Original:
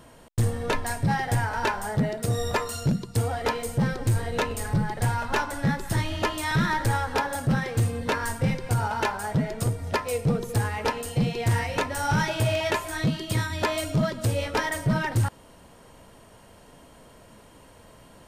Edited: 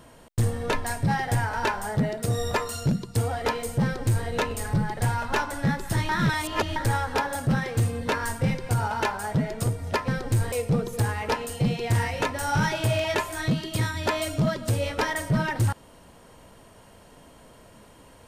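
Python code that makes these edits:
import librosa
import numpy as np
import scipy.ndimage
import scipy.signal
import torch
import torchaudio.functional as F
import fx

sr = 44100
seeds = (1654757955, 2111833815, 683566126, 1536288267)

y = fx.edit(x, sr, fx.duplicate(start_s=3.83, length_s=0.44, to_s=10.08),
    fx.reverse_span(start_s=6.09, length_s=0.67), tone=tone)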